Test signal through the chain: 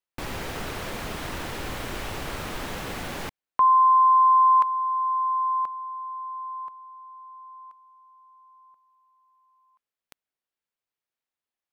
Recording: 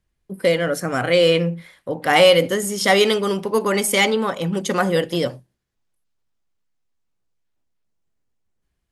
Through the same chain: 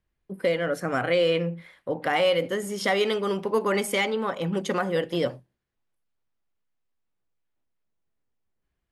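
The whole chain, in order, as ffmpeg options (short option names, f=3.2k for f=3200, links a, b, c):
-af "bass=f=250:g=-3,treble=f=4k:g=-9,alimiter=limit=-11dB:level=0:latency=1:release=486,volume=-2.5dB"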